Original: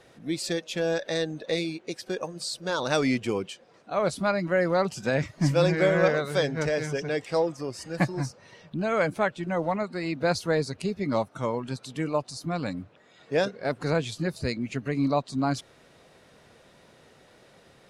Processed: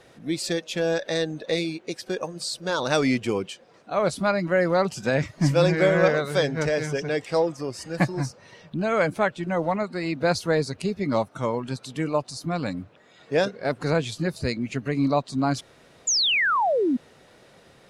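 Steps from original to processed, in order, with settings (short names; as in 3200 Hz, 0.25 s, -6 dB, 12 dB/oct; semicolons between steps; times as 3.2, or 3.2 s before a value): painted sound fall, 16.07–16.97, 230–7300 Hz -24 dBFS; gain +2.5 dB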